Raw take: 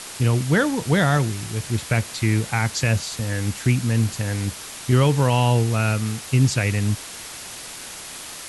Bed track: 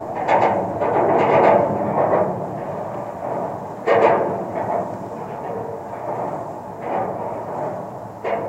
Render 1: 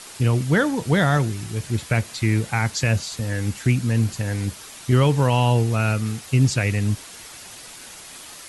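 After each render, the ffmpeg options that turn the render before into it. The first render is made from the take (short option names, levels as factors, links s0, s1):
-af "afftdn=nr=6:nf=-37"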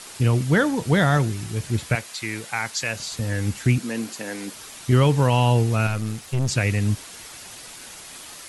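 -filter_complex "[0:a]asettb=1/sr,asplit=3[s0][s1][s2];[s0]atrim=end=1.954[s3];[s1]atrim=start=1.95:end=3,asetpts=PTS-STARTPTS,afade=t=in:d=0.004:c=qsin,afade=t=out:st=1.046:d=0.004:c=qsin,highpass=f=780:p=1[s4];[s2]atrim=start=2.996[s5];[s3][s4]acrossfade=d=0.004:c1=hsin:c2=qsin[s6];[s6][s5]acrossfade=d=0.004:c1=qsin:c2=hsin,asettb=1/sr,asplit=3[s7][s8][s9];[s7]atrim=end=3.784[s10];[s8]atrim=start=3.78:end=4.55,asetpts=PTS-STARTPTS,afade=t=in:d=0.004:c=qsin,afade=t=out:st=0.766:d=0.004:c=qsin,highpass=f=230:w=0.5412,highpass=f=230:w=1.3066[s11];[s9]atrim=start=4.546[s12];[s10][s11]acrossfade=d=0.004:c1=hsin:c2=qsin[s13];[s13][s12]acrossfade=d=0.004:c1=qsin:c2=hsin,asettb=1/sr,asplit=3[s14][s15][s16];[s14]atrim=end=5.874[s17];[s15]atrim=start=5.87:end=6.49,asetpts=PTS-STARTPTS,afade=t=in:d=0.004:c=qsin,afade=t=out:st=0.616:d=0.004:c=qsin,aeval=exprs='(tanh(8.91*val(0)+0.5)-tanh(0.5))/8.91':c=same[s18];[s16]atrim=start=6.486[s19];[s17][s18]acrossfade=d=0.004:c1=hsin:c2=qsin[s20];[s20][s19]acrossfade=d=0.004:c1=qsin:c2=hsin"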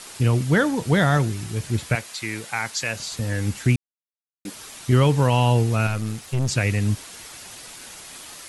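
-filter_complex "[0:a]asplit=3[s0][s1][s2];[s0]atrim=end=3.76,asetpts=PTS-STARTPTS,afade=t=out:st=3.756:d=0.004:c=hsin[s3];[s1]atrim=start=3.76:end=4.45,asetpts=PTS-STARTPTS,volume=0[s4];[s2]atrim=start=4.45,asetpts=PTS-STARTPTS,afade=t=in:d=0.004:c=hsin[s5];[s3][s4][s5]concat=n=3:v=0:a=1"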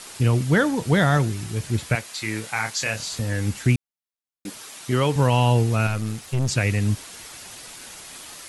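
-filter_complex "[0:a]asettb=1/sr,asplit=3[s0][s1][s2];[s0]atrim=end=2.134[s3];[s1]atrim=start=2.13:end=3.22,asetpts=PTS-STARTPTS,afade=t=in:d=0.004:c=qsin,afade=t=out:st=1.086:d=0.004:c=qsin,asplit=2[s4][s5];[s5]adelay=28,volume=0.531[s6];[s4][s6]amix=inputs=2:normalize=0,atrim=end_sample=48069[s7];[s2]atrim=start=3.216[s8];[s3][s7]acrossfade=d=0.004:c1=hsin:c2=qsin[s9];[s9][s8]acrossfade=d=0.004:c1=qsin:c2=hsin,asettb=1/sr,asplit=3[s10][s11][s12];[s10]atrim=end=4.584[s13];[s11]atrim=start=4.58:end=5.16,asetpts=PTS-STARTPTS,afade=t=in:d=0.004:c=qsin,afade=t=out:st=0.576:d=0.004:c=qsin,highpass=f=260:p=1[s14];[s12]atrim=start=5.156[s15];[s13][s14]acrossfade=d=0.004:c1=hsin:c2=qsin[s16];[s16][s15]acrossfade=d=0.004:c1=qsin:c2=hsin"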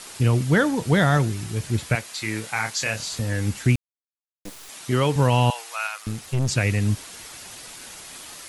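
-filter_complex "[0:a]asettb=1/sr,asplit=3[s0][s1][s2];[s0]atrim=end=3.754[s3];[s1]atrim=start=3.75:end=4.69,asetpts=PTS-STARTPTS,afade=t=in:d=0.004:c=qsin,afade=t=out:st=0.936:d=0.004:c=qsin,acrusher=bits=4:dc=4:mix=0:aa=0.000001[s4];[s2]atrim=start=4.686[s5];[s3][s4]acrossfade=d=0.004:c1=hsin:c2=qsin[s6];[s6][s5]acrossfade=d=0.004:c1=qsin:c2=hsin,asettb=1/sr,asplit=3[s7][s8][s9];[s7]atrim=end=5.504[s10];[s8]atrim=start=5.5:end=6.07,asetpts=PTS-STARTPTS,afade=t=in:d=0.004:c=qsin,afade=t=out:st=0.566:d=0.004:c=qsin,highpass=f=860:w=0.5412,highpass=f=860:w=1.3066[s11];[s9]atrim=start=6.066[s12];[s10][s11]acrossfade=d=0.004:c1=hsin:c2=qsin[s13];[s13][s12]acrossfade=d=0.004:c1=qsin:c2=hsin"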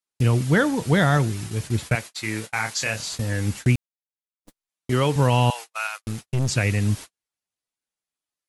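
-af "agate=range=0.00282:threshold=0.0251:ratio=16:detection=peak"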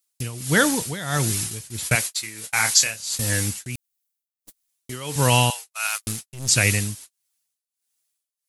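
-af "crystalizer=i=5.5:c=0,tremolo=f=1.5:d=0.86"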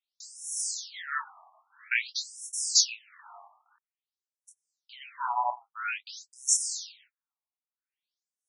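-af "flanger=delay=22.5:depth=2.9:speed=0.85,afftfilt=real='re*between(b*sr/1024,850*pow(7700/850,0.5+0.5*sin(2*PI*0.5*pts/sr))/1.41,850*pow(7700/850,0.5+0.5*sin(2*PI*0.5*pts/sr))*1.41)':imag='im*between(b*sr/1024,850*pow(7700/850,0.5+0.5*sin(2*PI*0.5*pts/sr))/1.41,850*pow(7700/850,0.5+0.5*sin(2*PI*0.5*pts/sr))*1.41)':win_size=1024:overlap=0.75"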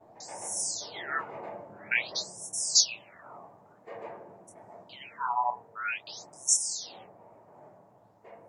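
-filter_complex "[1:a]volume=0.0398[s0];[0:a][s0]amix=inputs=2:normalize=0"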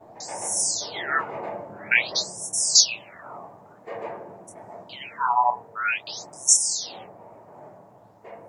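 -af "volume=2.51,alimiter=limit=0.708:level=0:latency=1"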